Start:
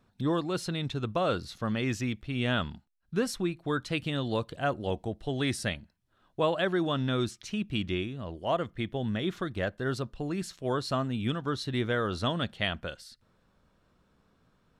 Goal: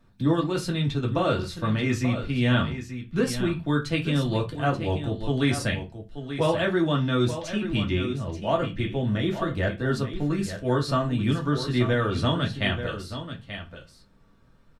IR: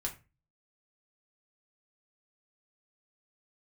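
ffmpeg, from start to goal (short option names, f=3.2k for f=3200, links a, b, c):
-filter_complex "[0:a]aecho=1:1:883:0.299[a];[1:a]atrim=start_sample=2205,asetrate=52920,aresample=44100[b];[a][b]afir=irnorm=-1:irlink=0,volume=4.5dB"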